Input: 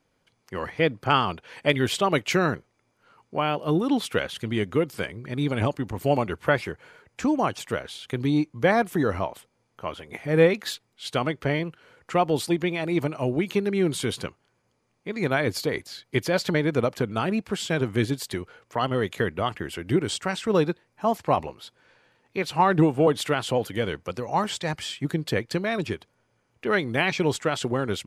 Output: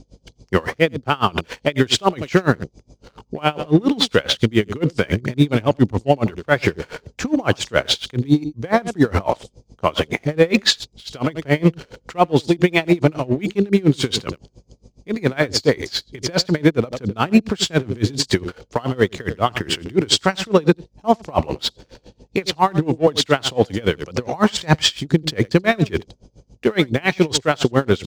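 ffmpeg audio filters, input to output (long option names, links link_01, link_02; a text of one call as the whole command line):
ffmpeg -i in.wav -filter_complex "[0:a]lowpass=frequency=6700:width=0.5412,lowpass=frequency=6700:width=1.3066,areverse,acompressor=threshold=-32dB:ratio=10,areverse,aecho=1:1:85:0.178,acrossover=split=660|4000[link_01][link_02][link_03];[link_02]aeval=exprs='sgn(val(0))*max(abs(val(0))-0.0015,0)':channel_layout=same[link_04];[link_01][link_04][link_03]amix=inputs=3:normalize=0,aeval=exprs='val(0)+0.000355*(sin(2*PI*50*n/s)+sin(2*PI*2*50*n/s)/2+sin(2*PI*3*50*n/s)/3+sin(2*PI*4*50*n/s)/4+sin(2*PI*5*50*n/s)/5)':channel_layout=same,alimiter=level_in=26.5dB:limit=-1dB:release=50:level=0:latency=1,aeval=exprs='val(0)*pow(10,-27*(0.5-0.5*cos(2*PI*7.2*n/s))/20)':channel_layout=same" out.wav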